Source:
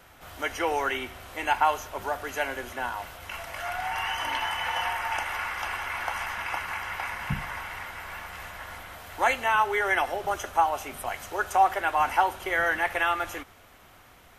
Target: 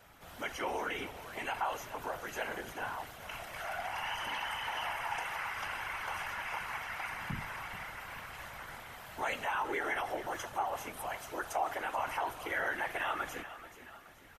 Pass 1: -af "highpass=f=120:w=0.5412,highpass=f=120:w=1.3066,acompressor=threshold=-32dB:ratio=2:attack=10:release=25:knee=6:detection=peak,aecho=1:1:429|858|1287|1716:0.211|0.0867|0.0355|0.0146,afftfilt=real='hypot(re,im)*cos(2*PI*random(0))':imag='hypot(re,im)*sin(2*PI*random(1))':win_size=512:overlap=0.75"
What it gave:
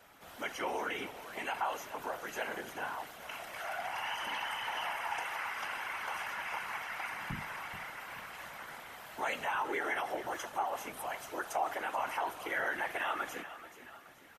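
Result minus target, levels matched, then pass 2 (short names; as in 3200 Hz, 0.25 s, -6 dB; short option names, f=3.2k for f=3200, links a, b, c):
125 Hz band -4.0 dB
-af "acompressor=threshold=-32dB:ratio=2:attack=10:release=25:knee=6:detection=peak,aecho=1:1:429|858|1287|1716:0.211|0.0867|0.0355|0.0146,afftfilt=real='hypot(re,im)*cos(2*PI*random(0))':imag='hypot(re,im)*sin(2*PI*random(1))':win_size=512:overlap=0.75"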